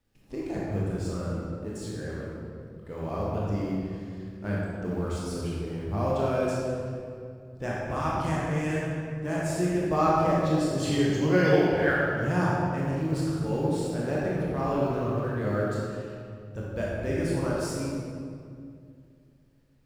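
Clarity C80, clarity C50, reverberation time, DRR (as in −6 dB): −0.5 dB, −3.0 dB, 2.3 s, −6.0 dB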